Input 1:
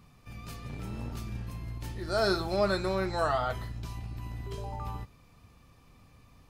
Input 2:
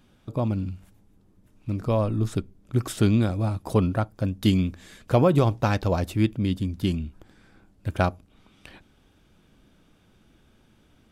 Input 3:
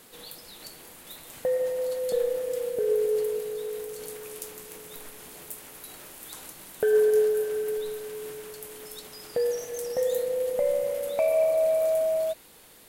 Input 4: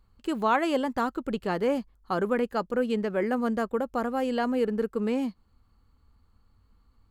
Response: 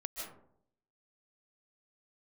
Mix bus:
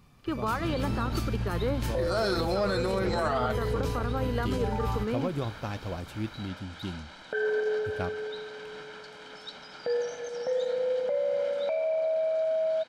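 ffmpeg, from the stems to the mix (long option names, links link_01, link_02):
-filter_complex "[0:a]dynaudnorm=framelen=190:gausssize=5:maxgain=9dB,asoftclip=type=tanh:threshold=-9.5dB,volume=-1dB[link_01];[1:a]volume=-12dB[link_02];[2:a]aecho=1:1:1.3:0.69,alimiter=limit=-22dB:level=0:latency=1,adelay=500,volume=2dB[link_03];[3:a]volume=-2dB[link_04];[link_03][link_04]amix=inputs=2:normalize=0,highpass=210,equalizer=frequency=710:width_type=q:width=4:gain=-5,equalizer=frequency=1300:width_type=q:width=4:gain=6,equalizer=frequency=2500:width_type=q:width=4:gain=-4,lowpass=frequency=4600:width=0.5412,lowpass=frequency=4600:width=1.3066,alimiter=limit=-19dB:level=0:latency=1:release=175,volume=0dB[link_05];[link_01][link_02][link_05]amix=inputs=3:normalize=0,alimiter=limit=-19.5dB:level=0:latency=1:release=59"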